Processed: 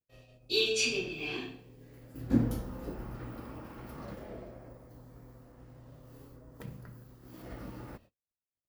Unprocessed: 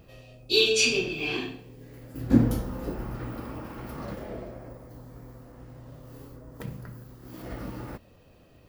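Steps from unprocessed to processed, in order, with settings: gate -49 dBFS, range -46 dB; trim -7 dB

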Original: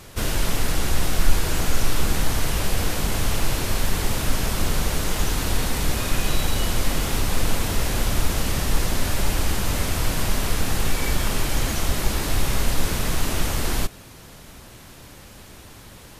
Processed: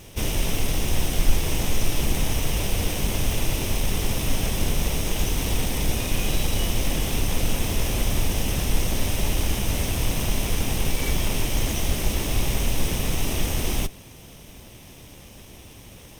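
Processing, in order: comb filter that takes the minimum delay 0.35 ms

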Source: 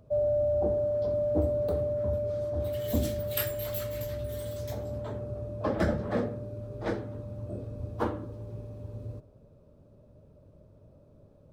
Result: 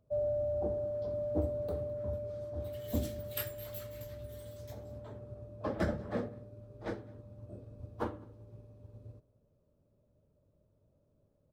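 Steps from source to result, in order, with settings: delay 209 ms -21 dB; upward expansion 1.5:1, over -45 dBFS; trim -4.5 dB

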